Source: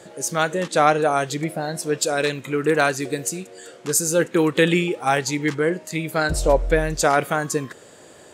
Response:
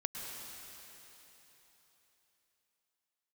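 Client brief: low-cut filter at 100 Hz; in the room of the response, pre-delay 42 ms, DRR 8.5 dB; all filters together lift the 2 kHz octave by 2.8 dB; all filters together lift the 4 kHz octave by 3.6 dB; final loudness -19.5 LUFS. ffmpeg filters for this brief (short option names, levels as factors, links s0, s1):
-filter_complex "[0:a]highpass=100,equalizer=f=2000:t=o:g=3,equalizer=f=4000:t=o:g=3.5,asplit=2[s0][s1];[1:a]atrim=start_sample=2205,adelay=42[s2];[s1][s2]afir=irnorm=-1:irlink=0,volume=0.316[s3];[s0][s3]amix=inputs=2:normalize=0,volume=1.06"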